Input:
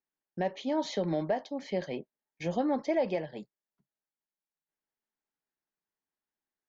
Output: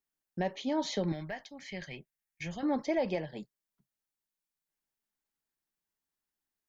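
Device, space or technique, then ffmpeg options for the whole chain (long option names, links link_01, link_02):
smiley-face EQ: -filter_complex "[0:a]asettb=1/sr,asplit=3[link_01][link_02][link_03];[link_01]atrim=end=1.124[link_04];[link_02]atrim=start=1.12:end=2.63,asetpts=PTS-STARTPTS,afade=type=in:duration=0.004:curve=qsin,afade=type=out:start_time=1.506:duration=0.004:curve=qsin,equalizer=frequency=250:width_type=o:width=1:gain=-10,equalizer=frequency=500:width_type=o:width=1:gain=-10,equalizer=frequency=1000:width_type=o:width=1:gain=-7,equalizer=frequency=2000:width_type=o:width=1:gain=5,equalizer=frequency=4000:width_type=o:width=1:gain=-4[link_05];[link_03]atrim=start=2.626[link_06];[link_04][link_05]acrossfade=duration=0.004:curve1=hsin:curve2=qsin[link_07];[link_07][link_06]acrossfade=duration=0.004:curve1=qsin:curve2=hsin,lowshelf=frequency=92:gain=8.5,equalizer=frequency=550:width_type=o:width=1.5:gain=-3,highshelf=frequency=5700:gain=5.5"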